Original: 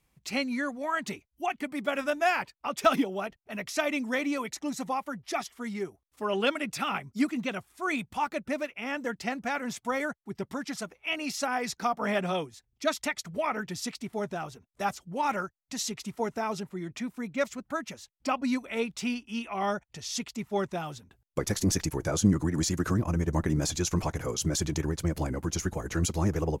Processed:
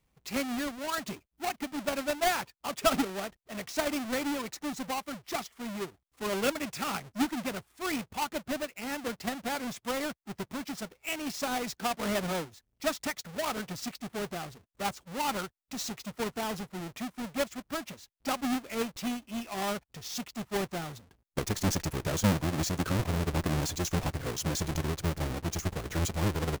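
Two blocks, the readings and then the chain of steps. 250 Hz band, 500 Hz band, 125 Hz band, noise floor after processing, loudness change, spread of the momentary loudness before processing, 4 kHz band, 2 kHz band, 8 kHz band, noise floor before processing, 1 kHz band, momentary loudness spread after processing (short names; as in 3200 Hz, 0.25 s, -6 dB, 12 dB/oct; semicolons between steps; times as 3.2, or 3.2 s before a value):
-3.0 dB, -2.5 dB, -2.0 dB, -78 dBFS, -2.5 dB, 9 LU, 0.0 dB, -3.5 dB, -2.0 dB, -76 dBFS, -3.0 dB, 8 LU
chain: half-waves squared off; gain -6.5 dB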